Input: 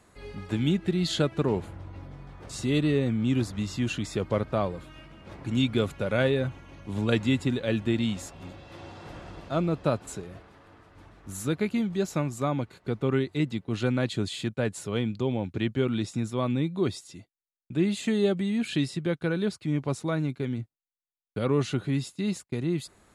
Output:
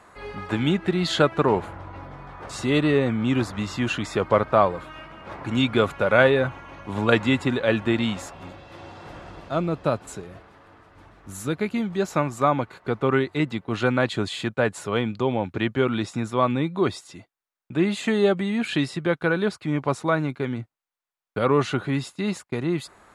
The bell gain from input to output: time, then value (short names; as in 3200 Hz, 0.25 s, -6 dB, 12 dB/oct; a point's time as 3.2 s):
bell 1100 Hz 2.5 oct
8.09 s +13.5 dB
8.7 s +4.5 dB
11.58 s +4.5 dB
12.27 s +12 dB